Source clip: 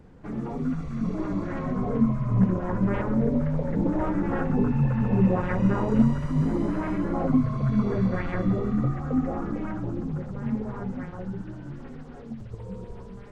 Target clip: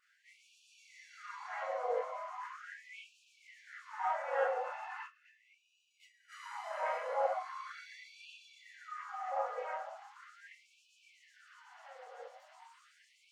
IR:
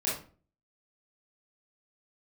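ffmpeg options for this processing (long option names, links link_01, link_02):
-filter_complex "[0:a]asplit=3[link_01][link_02][link_03];[link_01]afade=type=out:start_time=5.03:duration=0.02[link_04];[link_02]agate=range=-19dB:threshold=-15dB:ratio=16:detection=peak,afade=type=in:start_time=5.03:duration=0.02,afade=type=out:start_time=6.28:duration=0.02[link_05];[link_03]afade=type=in:start_time=6.28:duration=0.02[link_06];[link_04][link_05][link_06]amix=inputs=3:normalize=0[link_07];[1:a]atrim=start_sample=2205,atrim=end_sample=4410,asetrate=52920,aresample=44100[link_08];[link_07][link_08]afir=irnorm=-1:irlink=0,afftfilt=real='re*gte(b*sr/1024,460*pow(2400/460,0.5+0.5*sin(2*PI*0.39*pts/sr)))':imag='im*gte(b*sr/1024,460*pow(2400/460,0.5+0.5*sin(2*PI*0.39*pts/sr)))':win_size=1024:overlap=0.75,volume=-6dB"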